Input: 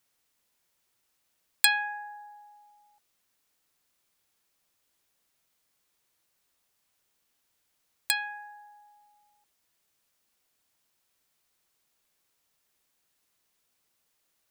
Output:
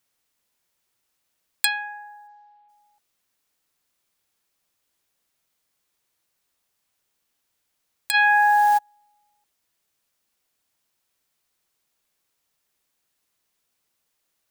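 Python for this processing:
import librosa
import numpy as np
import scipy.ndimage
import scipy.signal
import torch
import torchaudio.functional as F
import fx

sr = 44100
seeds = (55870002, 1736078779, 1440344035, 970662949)

y = fx.lowpass(x, sr, hz=fx.line((2.27, 6600.0), (2.68, 3300.0)), slope=24, at=(2.27, 2.68), fade=0.02)
y = fx.env_flatten(y, sr, amount_pct=100, at=(8.13, 8.77), fade=0.02)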